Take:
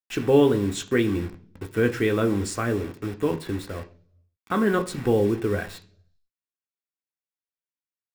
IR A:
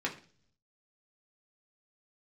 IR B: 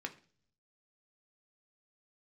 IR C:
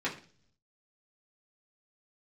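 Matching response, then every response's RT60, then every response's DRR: B; 0.45 s, no single decay rate, 0.45 s; -2.0 dB, 4.0 dB, -7.0 dB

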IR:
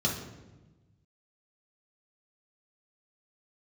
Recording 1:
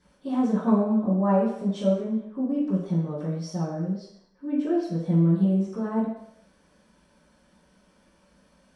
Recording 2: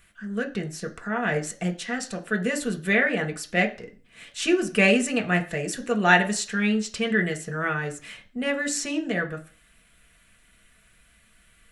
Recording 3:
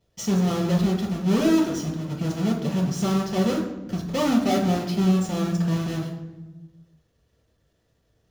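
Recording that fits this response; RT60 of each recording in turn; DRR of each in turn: 3; 0.70 s, 0.40 s, 1.1 s; -13.5 dB, 2.5 dB, -3.5 dB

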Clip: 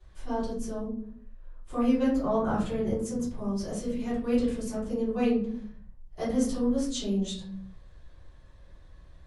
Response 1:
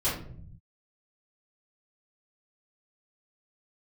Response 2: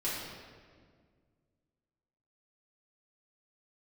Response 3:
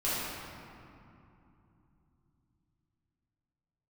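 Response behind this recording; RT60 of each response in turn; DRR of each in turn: 1; 0.55 s, 1.8 s, 2.8 s; -12.0 dB, -9.5 dB, -11.5 dB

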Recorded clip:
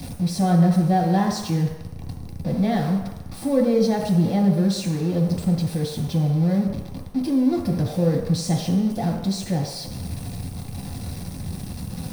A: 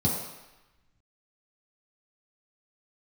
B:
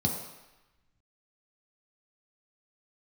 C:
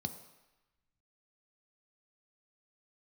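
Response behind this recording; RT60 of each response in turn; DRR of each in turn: B; 1.0 s, 1.0 s, 1.0 s; -7.0 dB, -1.0 dB, 7.5 dB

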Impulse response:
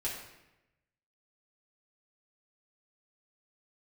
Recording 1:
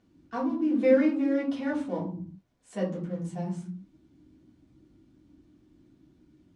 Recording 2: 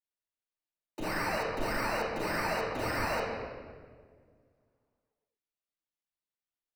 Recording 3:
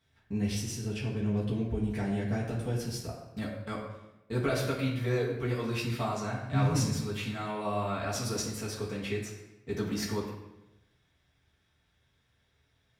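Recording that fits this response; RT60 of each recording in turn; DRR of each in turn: 3; 0.60 s, 1.8 s, 0.95 s; -6.0 dB, -7.0 dB, -6.5 dB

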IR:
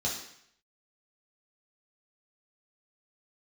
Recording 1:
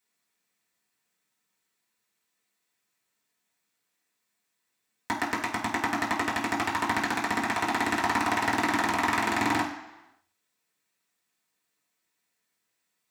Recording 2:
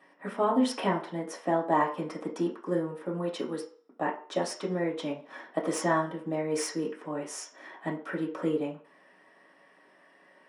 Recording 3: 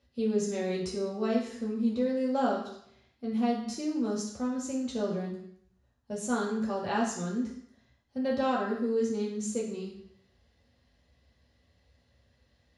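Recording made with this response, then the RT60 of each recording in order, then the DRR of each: 3; 1.0 s, 0.45 s, 0.70 s; -7.5 dB, -3.5 dB, -4.5 dB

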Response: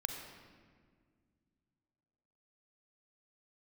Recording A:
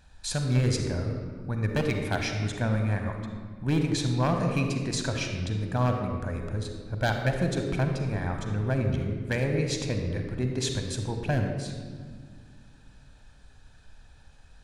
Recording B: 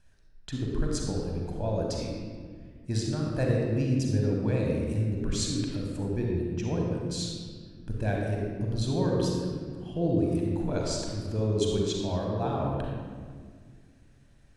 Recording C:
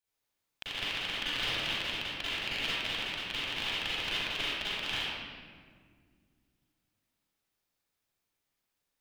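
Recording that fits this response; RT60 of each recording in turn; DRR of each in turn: A; 1.9 s, 1.9 s, 1.8 s; 4.0 dB, -1.5 dB, -10.5 dB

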